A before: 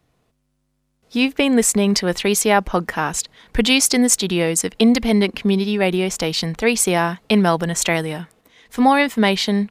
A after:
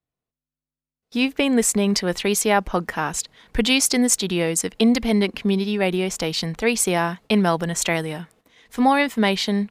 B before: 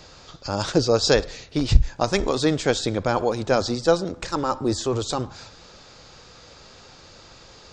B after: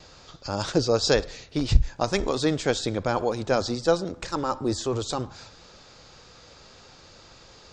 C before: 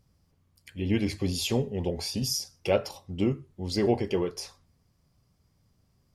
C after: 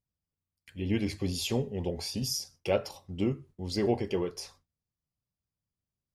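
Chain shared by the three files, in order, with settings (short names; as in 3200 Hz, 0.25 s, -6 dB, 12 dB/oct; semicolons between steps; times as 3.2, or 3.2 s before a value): gate with hold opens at -42 dBFS; gain -3 dB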